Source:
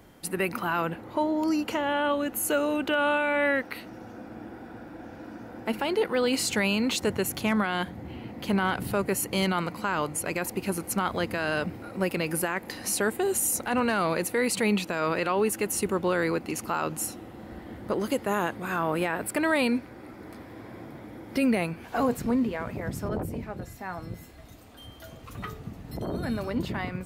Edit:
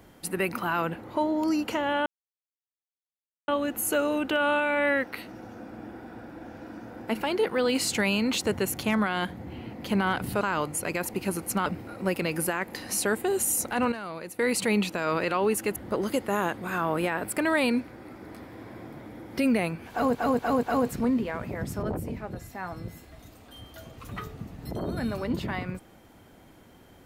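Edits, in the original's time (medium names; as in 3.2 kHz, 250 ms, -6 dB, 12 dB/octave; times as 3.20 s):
2.06 s: insert silence 1.42 s
8.99–9.82 s: delete
11.07–11.61 s: delete
13.87–14.34 s: gain -11 dB
15.71–17.74 s: delete
21.89 s: stutter 0.24 s, 4 plays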